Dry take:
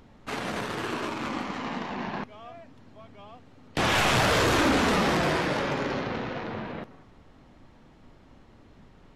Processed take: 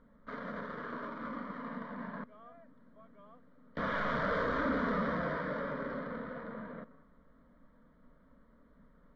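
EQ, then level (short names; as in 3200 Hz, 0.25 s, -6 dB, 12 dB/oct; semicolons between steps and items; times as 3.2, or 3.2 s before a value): LPF 3100 Hz 24 dB/oct; fixed phaser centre 530 Hz, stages 8; -6.5 dB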